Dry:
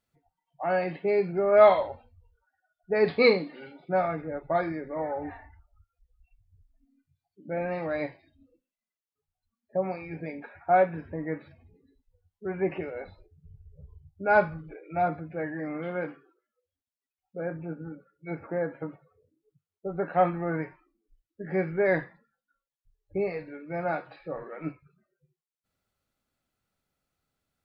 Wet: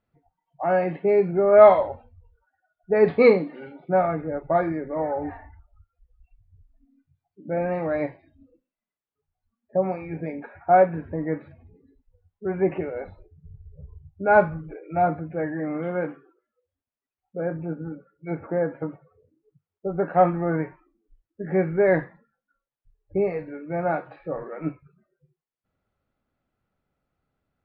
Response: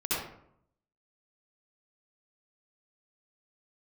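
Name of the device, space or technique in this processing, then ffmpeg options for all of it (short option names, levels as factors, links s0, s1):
phone in a pocket: -af "lowpass=3200,highshelf=f=2200:g=-11,volume=2"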